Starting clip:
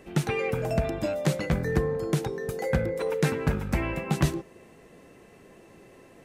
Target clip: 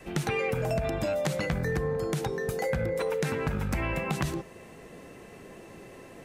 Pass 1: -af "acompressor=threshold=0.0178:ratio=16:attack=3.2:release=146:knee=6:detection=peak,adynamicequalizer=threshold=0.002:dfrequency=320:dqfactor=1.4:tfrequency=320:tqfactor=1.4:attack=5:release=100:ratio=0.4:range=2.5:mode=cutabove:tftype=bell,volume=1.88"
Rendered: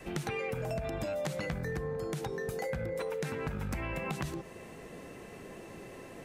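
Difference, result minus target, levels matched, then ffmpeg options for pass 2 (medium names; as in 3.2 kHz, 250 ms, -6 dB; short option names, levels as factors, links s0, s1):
compression: peak gain reduction +7 dB
-af "acompressor=threshold=0.0422:ratio=16:attack=3.2:release=146:knee=6:detection=peak,adynamicequalizer=threshold=0.002:dfrequency=320:dqfactor=1.4:tfrequency=320:tqfactor=1.4:attack=5:release=100:ratio=0.4:range=2.5:mode=cutabove:tftype=bell,volume=1.88"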